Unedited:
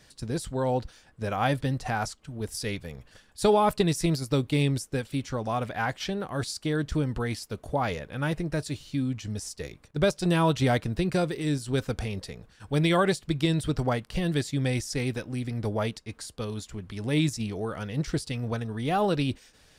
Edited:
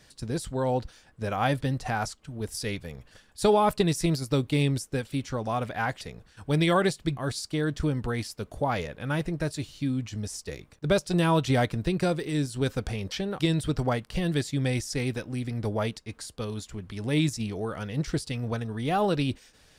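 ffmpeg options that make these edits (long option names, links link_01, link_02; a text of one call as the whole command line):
ffmpeg -i in.wav -filter_complex "[0:a]asplit=5[link_01][link_02][link_03][link_04][link_05];[link_01]atrim=end=6.012[link_06];[link_02]atrim=start=12.238:end=13.402[link_07];[link_03]atrim=start=6.288:end=12.242[link_08];[link_04]atrim=start=6.008:end=6.292[link_09];[link_05]atrim=start=13.398[link_10];[link_06][link_07]acrossfade=duration=0.004:curve1=hsin:curve2=hsin[link_11];[link_11][link_08]acrossfade=duration=0.004:curve1=hsin:curve2=hsin[link_12];[link_12][link_09]acrossfade=duration=0.004:curve1=hsin:curve2=hsin[link_13];[link_13][link_10]acrossfade=duration=0.004:curve1=hsin:curve2=hsin" out.wav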